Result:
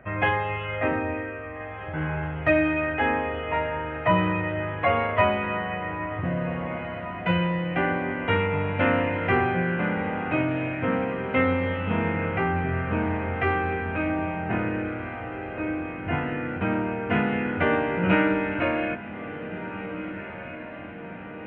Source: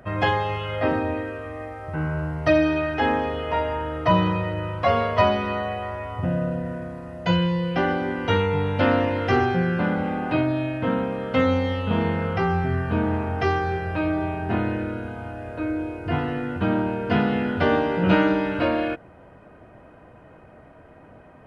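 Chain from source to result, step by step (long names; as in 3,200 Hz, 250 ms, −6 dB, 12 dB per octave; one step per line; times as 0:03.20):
high shelf with overshoot 3,400 Hz −13.5 dB, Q 3
feedback delay with all-pass diffusion 1,794 ms, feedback 58%, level −12 dB
level −3.5 dB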